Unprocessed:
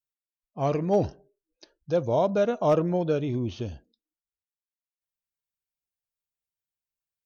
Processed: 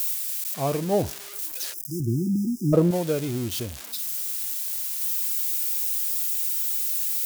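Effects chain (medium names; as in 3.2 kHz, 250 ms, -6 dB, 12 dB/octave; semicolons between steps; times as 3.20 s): zero-crossing glitches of -21 dBFS; 1.73–2.73 s: spectral selection erased 380–4900 Hz; 2.00–2.91 s: tilt shelf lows +8 dB, about 1.3 kHz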